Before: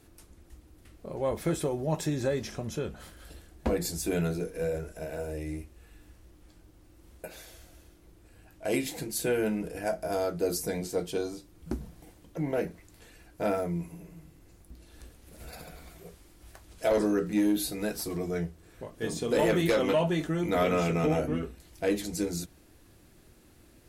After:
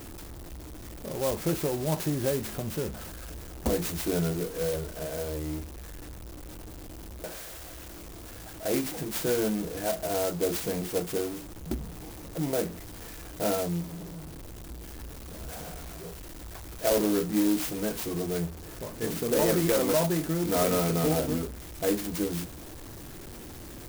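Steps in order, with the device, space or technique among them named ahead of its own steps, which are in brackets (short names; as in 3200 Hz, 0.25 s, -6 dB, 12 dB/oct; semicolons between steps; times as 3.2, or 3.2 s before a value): 7.37–8.65 low shelf 460 Hz -6.5 dB; early CD player with a faulty converter (zero-crossing step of -38 dBFS; clock jitter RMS 0.1 ms)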